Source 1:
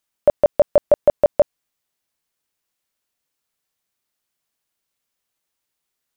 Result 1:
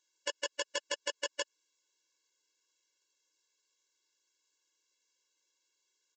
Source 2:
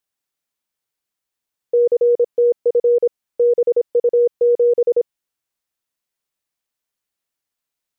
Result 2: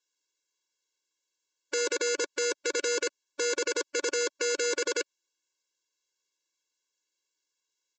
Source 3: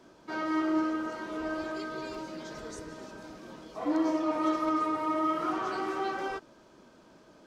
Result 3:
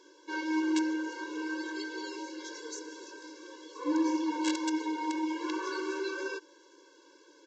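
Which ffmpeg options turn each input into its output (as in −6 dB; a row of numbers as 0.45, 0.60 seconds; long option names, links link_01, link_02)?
-af "alimiter=limit=-14.5dB:level=0:latency=1:release=91,crystalizer=i=3:c=0,aresample=16000,aeval=exprs='(mod(8.41*val(0)+1,2)-1)/8.41':channel_layout=same,aresample=44100,afftfilt=real='re*eq(mod(floor(b*sr/1024/290),2),1)':imag='im*eq(mod(floor(b*sr/1024/290),2),1)':win_size=1024:overlap=0.75"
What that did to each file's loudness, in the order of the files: −19.5, −12.5, −2.0 LU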